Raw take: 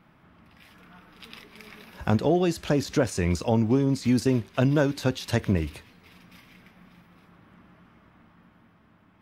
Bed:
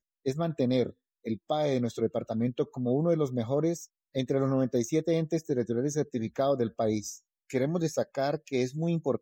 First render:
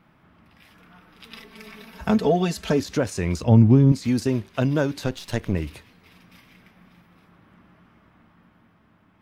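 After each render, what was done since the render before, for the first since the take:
0:01.31–0:02.80: comb filter 4.5 ms, depth 98%
0:03.42–0:03.92: bass and treble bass +13 dB, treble −7 dB
0:05.06–0:05.54: gain on one half-wave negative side −7 dB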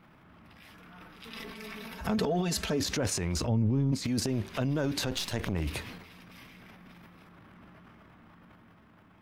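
transient designer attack −5 dB, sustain +11 dB
downward compressor 3 to 1, threshold −29 dBFS, peak gain reduction 14 dB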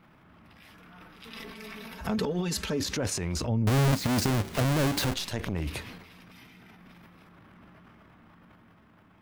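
0:02.16–0:02.98: Butterworth band-reject 680 Hz, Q 5.8
0:03.67–0:05.14: each half-wave held at its own peak
0:06.32–0:06.79: notch comb filter 560 Hz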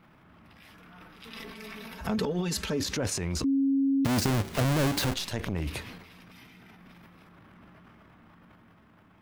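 0:03.44–0:04.05: beep over 273 Hz −21.5 dBFS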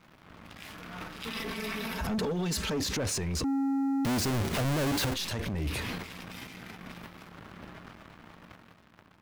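leveller curve on the samples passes 3
brickwall limiter −26.5 dBFS, peak gain reduction 11 dB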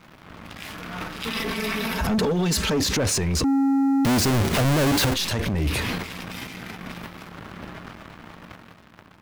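level +8.5 dB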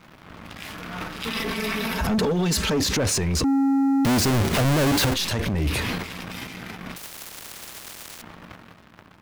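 0:06.96–0:08.22: every bin compressed towards the loudest bin 10 to 1

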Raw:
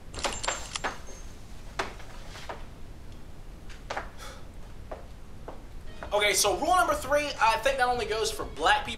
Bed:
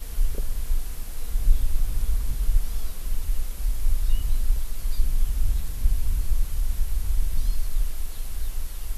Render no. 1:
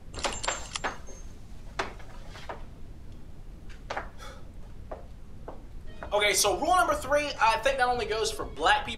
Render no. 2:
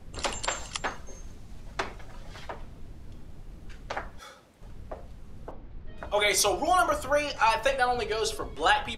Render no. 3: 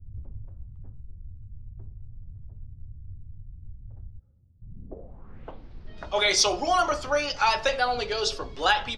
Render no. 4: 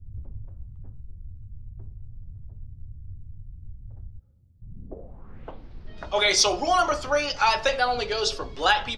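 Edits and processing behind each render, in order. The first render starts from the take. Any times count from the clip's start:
broadband denoise 6 dB, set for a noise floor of −46 dBFS
0:04.19–0:04.62: high-pass filter 580 Hz 6 dB per octave; 0:05.51–0:05.98: high-frequency loss of the air 210 metres
low-pass filter sweep 100 Hz → 5,100 Hz, 0:04.60–0:05.63; hard clipping −9 dBFS, distortion −42 dB
level +1.5 dB

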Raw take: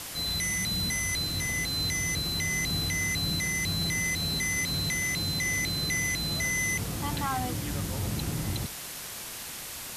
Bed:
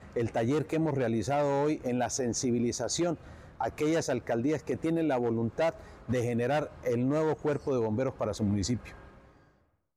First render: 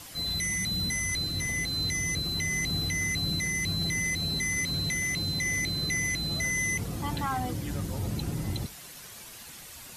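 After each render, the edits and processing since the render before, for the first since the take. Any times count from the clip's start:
broadband denoise 9 dB, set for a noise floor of −40 dBFS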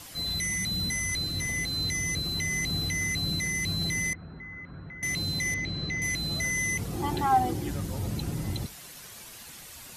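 0:04.13–0:05.03: transistor ladder low-pass 1,700 Hz, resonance 55%
0:05.54–0:06.02: high-frequency loss of the air 170 metres
0:06.93–0:07.70: hollow resonant body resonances 370/790 Hz, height 16 dB, ringing for 85 ms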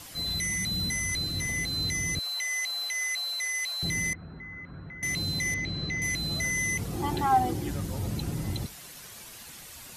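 0:02.19–0:03.83: high-pass filter 660 Hz 24 dB per octave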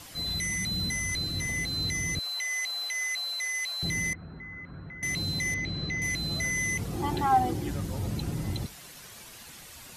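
high-shelf EQ 7,400 Hz −4 dB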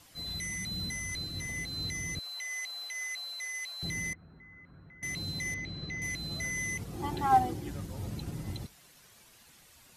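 expander for the loud parts 1.5 to 1, over −41 dBFS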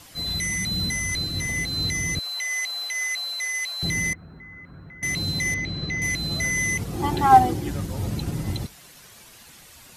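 level +10.5 dB

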